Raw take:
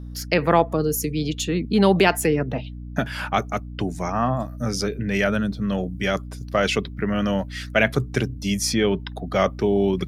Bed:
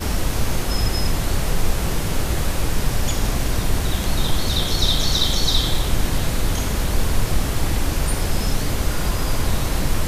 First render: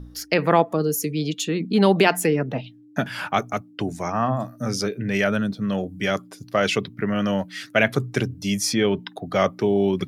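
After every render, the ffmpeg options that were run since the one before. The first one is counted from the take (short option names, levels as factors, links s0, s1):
-af "bandreject=f=60:t=h:w=4,bandreject=f=120:t=h:w=4,bandreject=f=180:t=h:w=4,bandreject=f=240:t=h:w=4"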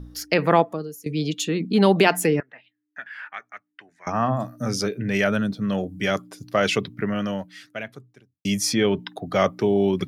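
-filter_complex "[0:a]asettb=1/sr,asplit=3[s0][s1][s2];[s0]atrim=end=2.404[s3];[s1]atrim=start=2.4:end=4.07,asetpts=PTS-STARTPTS,afade=t=in:d=0.004:c=qsin,afade=t=out:st=1.666:d=0.004:c=qsin,bandpass=f=1800:t=q:w=5.2[s4];[s2]atrim=start=4.066[s5];[s3][s4]acrossfade=d=0.004:c1=hsin:c2=qsin[s6];[s6][s5]acrossfade=d=0.004:c1=qsin:c2=hsin,asplit=3[s7][s8][s9];[s7]atrim=end=1.06,asetpts=PTS-STARTPTS,afade=t=out:st=0.59:d=0.47:c=qua:silence=0.11885[s10];[s8]atrim=start=1.06:end=8.45,asetpts=PTS-STARTPTS,afade=t=in:d=0.004:c=hsin:silence=0.11885,afade=t=out:st=5.91:d=1.48:c=qua[s11];[s9]atrim=start=8.45,asetpts=PTS-STARTPTS,afade=t=in:d=0.004:c=hsin[s12];[s10][s11][s12]concat=n=3:v=0:a=1"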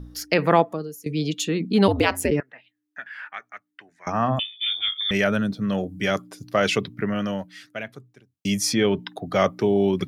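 -filter_complex "[0:a]asplit=3[s0][s1][s2];[s0]afade=t=out:st=1.87:d=0.02[s3];[s1]aeval=exprs='val(0)*sin(2*PI*90*n/s)':c=same,afade=t=in:st=1.87:d=0.02,afade=t=out:st=2.3:d=0.02[s4];[s2]afade=t=in:st=2.3:d=0.02[s5];[s3][s4][s5]amix=inputs=3:normalize=0,asettb=1/sr,asplit=3[s6][s7][s8];[s6]atrim=end=4.394[s9];[s7]atrim=start=4.39:end=5.11,asetpts=PTS-STARTPTS,afade=t=in:d=0.004:c=qsin,afade=t=out:st=0.716:d=0.004:c=qsin,lowpass=f=3100:t=q:w=0.5098,lowpass=f=3100:t=q:w=0.6013,lowpass=f=3100:t=q:w=0.9,lowpass=f=3100:t=q:w=2.563,afreqshift=-3700[s10];[s8]atrim=start=5.106[s11];[s9][s10]acrossfade=d=0.004:c1=hsin:c2=qsin[s12];[s12][s11]acrossfade=d=0.004:c1=qsin:c2=hsin"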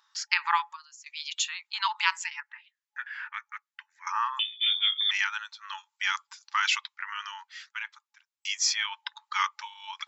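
-af "afftfilt=real='re*between(b*sr/4096,840,7700)':imag='im*between(b*sr/4096,840,7700)':win_size=4096:overlap=0.75,adynamicequalizer=threshold=0.01:dfrequency=1300:dqfactor=1.5:tfrequency=1300:tqfactor=1.5:attack=5:release=100:ratio=0.375:range=3:mode=cutabove:tftype=bell"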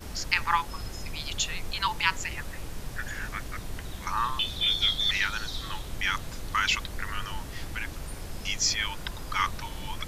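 -filter_complex "[1:a]volume=0.141[s0];[0:a][s0]amix=inputs=2:normalize=0"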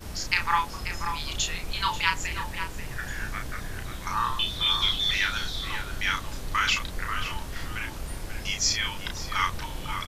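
-filter_complex "[0:a]asplit=2[s0][s1];[s1]adelay=33,volume=0.562[s2];[s0][s2]amix=inputs=2:normalize=0,asplit=2[s3][s4];[s4]adelay=536.4,volume=0.447,highshelf=f=4000:g=-12.1[s5];[s3][s5]amix=inputs=2:normalize=0"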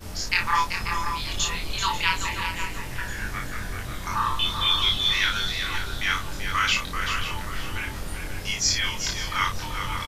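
-filter_complex "[0:a]asplit=2[s0][s1];[s1]adelay=23,volume=0.75[s2];[s0][s2]amix=inputs=2:normalize=0,aecho=1:1:386:0.422"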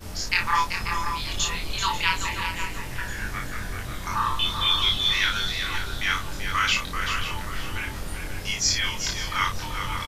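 -af anull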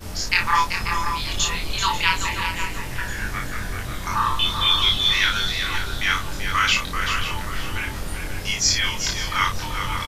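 -af "volume=1.5"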